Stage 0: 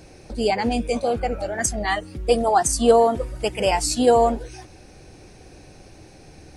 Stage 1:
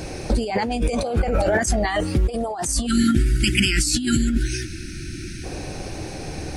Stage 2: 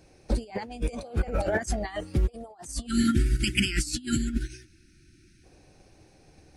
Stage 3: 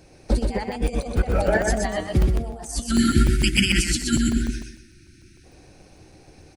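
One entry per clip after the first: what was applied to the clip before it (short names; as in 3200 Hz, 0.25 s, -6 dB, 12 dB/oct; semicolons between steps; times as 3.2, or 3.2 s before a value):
spectral delete 2.86–5.44, 370–1300 Hz; negative-ratio compressor -30 dBFS, ratio -1; gain +9 dB
upward expander 2.5:1, over -30 dBFS; gain -2.5 dB
on a send: feedback echo 0.124 s, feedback 30%, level -4 dB; on the sum: crackling interface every 0.15 s, samples 128, zero, from 0.72; gain +5.5 dB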